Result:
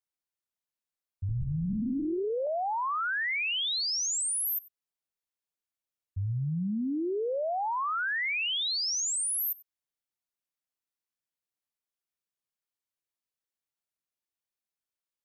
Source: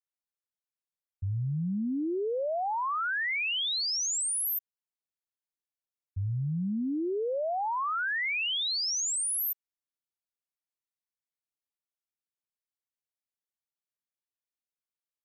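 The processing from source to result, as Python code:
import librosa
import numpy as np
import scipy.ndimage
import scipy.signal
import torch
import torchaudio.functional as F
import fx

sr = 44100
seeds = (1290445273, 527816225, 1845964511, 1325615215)

y = x + 10.0 ** (-22.0 / 20.0) * np.pad(x, (int(94 * sr / 1000.0), 0))[:len(x)]
y = fx.lpc_vocoder(y, sr, seeds[0], excitation='whisper', order=10, at=(1.29, 2.47))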